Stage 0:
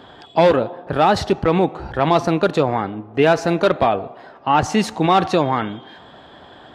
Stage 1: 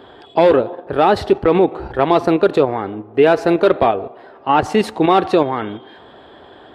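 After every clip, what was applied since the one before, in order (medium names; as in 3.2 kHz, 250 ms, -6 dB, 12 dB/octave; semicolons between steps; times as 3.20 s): fifteen-band graphic EQ 160 Hz -5 dB, 400 Hz +7 dB, 6.3 kHz -9 dB; in parallel at +2 dB: level held to a coarse grid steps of 16 dB; on the sum: trim -4.5 dB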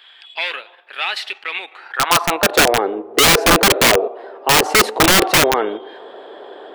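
high-pass sweep 2.4 kHz -> 440 Hz, 1.67–2.81 s; integer overflow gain 7.5 dB; trim +2 dB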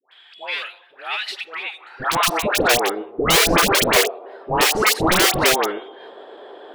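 phase dispersion highs, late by 121 ms, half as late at 1 kHz; trim -3.5 dB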